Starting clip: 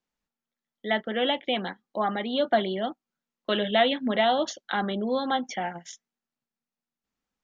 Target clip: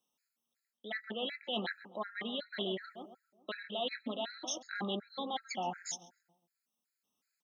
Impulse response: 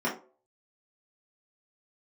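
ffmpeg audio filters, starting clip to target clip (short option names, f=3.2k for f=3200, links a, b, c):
-filter_complex "[0:a]highpass=160,highshelf=f=3.1k:g=11,areverse,acompressor=threshold=-32dB:ratio=12,areverse,asplit=2[a][b];[b]adelay=135,lowpass=f=1.5k:p=1,volume=-11.5dB,asplit=2[c][d];[d]adelay=135,lowpass=f=1.5k:p=1,volume=0.47,asplit=2[e][f];[f]adelay=135,lowpass=f=1.5k:p=1,volume=0.47,asplit=2[g][h];[h]adelay=135,lowpass=f=1.5k:p=1,volume=0.47,asplit=2[i][j];[j]adelay=135,lowpass=f=1.5k:p=1,volume=0.47[k];[a][c][e][g][i][k]amix=inputs=6:normalize=0,afftfilt=real='re*gt(sin(2*PI*2.7*pts/sr)*(1-2*mod(floor(b*sr/1024/1300),2)),0)':imag='im*gt(sin(2*PI*2.7*pts/sr)*(1-2*mod(floor(b*sr/1024/1300),2)),0)':win_size=1024:overlap=0.75"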